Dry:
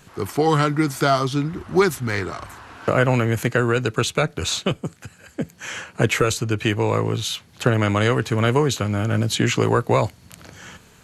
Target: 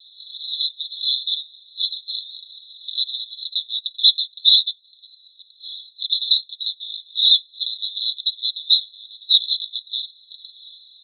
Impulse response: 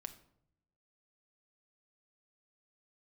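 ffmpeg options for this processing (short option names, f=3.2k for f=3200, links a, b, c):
-af "aecho=1:1:4.4:0.75,aresample=11025,aeval=exprs='0.708*sin(PI/2*3.98*val(0)/0.708)':c=same,aresample=44100,asuperpass=centerf=3800:order=20:qfactor=4.8"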